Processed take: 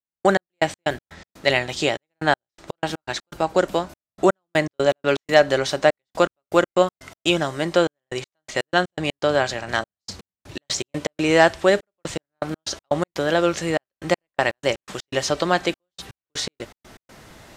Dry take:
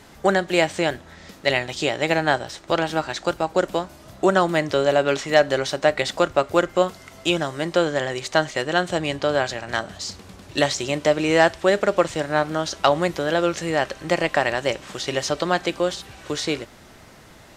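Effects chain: trance gate "..x..x.x.x.xxxxx" 122 bpm -60 dB; trim +1.5 dB

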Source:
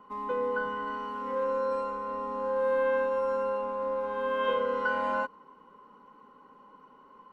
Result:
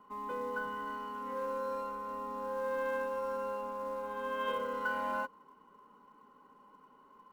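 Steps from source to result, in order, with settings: band-stop 510 Hz, Q 13; in parallel at -6.5 dB: short-mantissa float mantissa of 2-bit; on the sum: trim -8.5 dB

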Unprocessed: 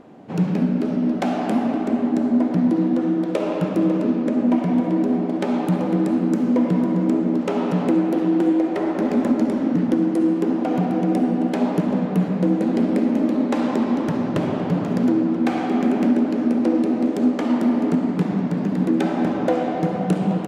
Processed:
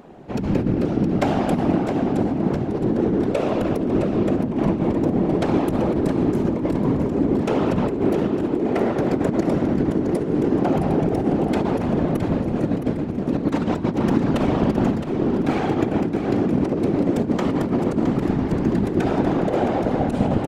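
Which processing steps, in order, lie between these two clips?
12.42–15.08 s: comb 4.4 ms, depth 69%; compressor with a negative ratio -20 dBFS, ratio -0.5; whisper effect; feedback delay 666 ms, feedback 39%, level -9 dB

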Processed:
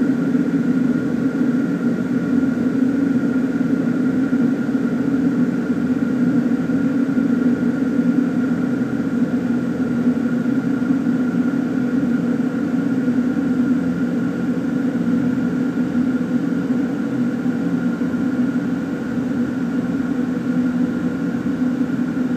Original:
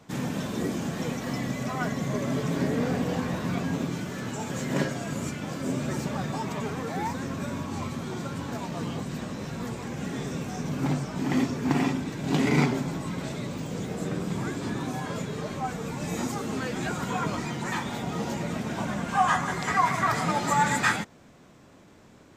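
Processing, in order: small resonant body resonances 260/1400 Hz, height 17 dB, ringing for 30 ms; Paulstretch 49×, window 1.00 s, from 2.73 s; trim -4 dB

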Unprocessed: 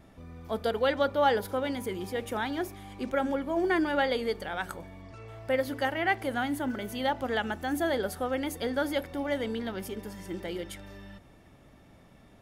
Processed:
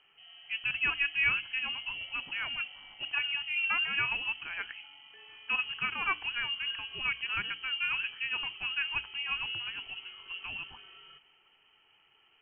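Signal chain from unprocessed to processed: frequency inversion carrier 3.1 kHz; hum notches 60/120/180/240/300 Hz; level-controlled noise filter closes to 1.8 kHz, open at -23.5 dBFS; trim -4 dB

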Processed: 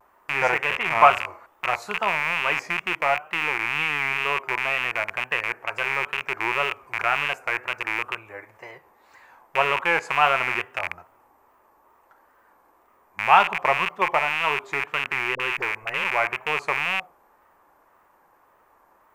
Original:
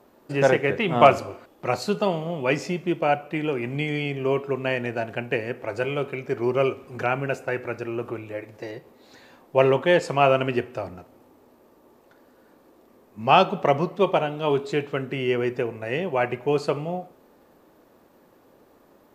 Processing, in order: rattle on loud lows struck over -36 dBFS, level -11 dBFS; ten-band graphic EQ 125 Hz -8 dB, 250 Hz -12 dB, 500 Hz -6 dB, 1 kHz +10 dB, 2 kHz +5 dB, 4 kHz -10 dB; wow and flutter 97 cents; 15.35–16.04 s: phase dispersion highs, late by 47 ms, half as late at 530 Hz; trim -3 dB

